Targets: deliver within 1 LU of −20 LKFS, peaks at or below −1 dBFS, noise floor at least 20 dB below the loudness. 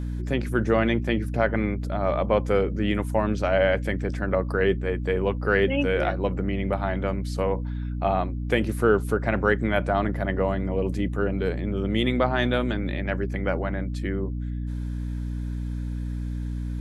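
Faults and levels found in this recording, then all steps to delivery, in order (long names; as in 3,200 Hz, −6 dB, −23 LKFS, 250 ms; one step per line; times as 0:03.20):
mains hum 60 Hz; hum harmonics up to 300 Hz; level of the hum −27 dBFS; integrated loudness −25.5 LKFS; sample peak −7.0 dBFS; target loudness −20.0 LKFS
→ mains-hum notches 60/120/180/240/300 Hz
level +5.5 dB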